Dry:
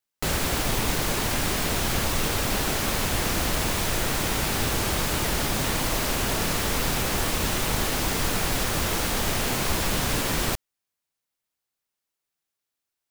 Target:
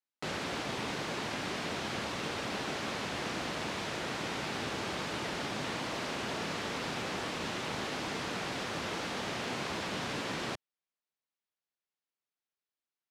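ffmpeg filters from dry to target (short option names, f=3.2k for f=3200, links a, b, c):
-af "highpass=160,lowpass=4.6k,volume=-8dB"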